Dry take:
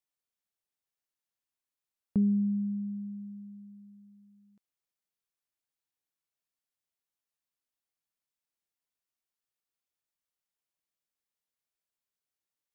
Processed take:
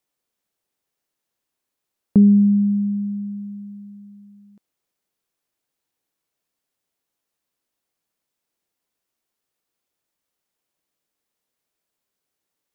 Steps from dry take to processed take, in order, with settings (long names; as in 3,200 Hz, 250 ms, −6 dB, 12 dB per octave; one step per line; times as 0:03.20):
parametric band 350 Hz +6.5 dB 2.4 octaves
level +9 dB